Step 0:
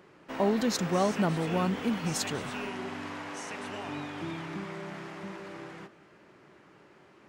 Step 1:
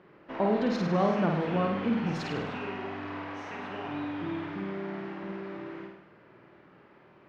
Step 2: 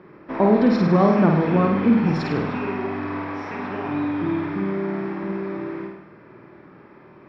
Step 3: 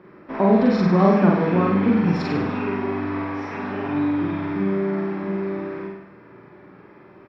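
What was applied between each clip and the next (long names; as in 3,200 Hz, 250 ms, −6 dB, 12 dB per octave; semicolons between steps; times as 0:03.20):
high-frequency loss of the air 280 metres; mains-hum notches 50/100 Hz; on a send: flutter between parallel walls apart 8.8 metres, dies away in 0.77 s
convolution reverb RT60 0.45 s, pre-delay 3 ms, DRR 15.5 dB
double-tracking delay 41 ms −2 dB; level −2 dB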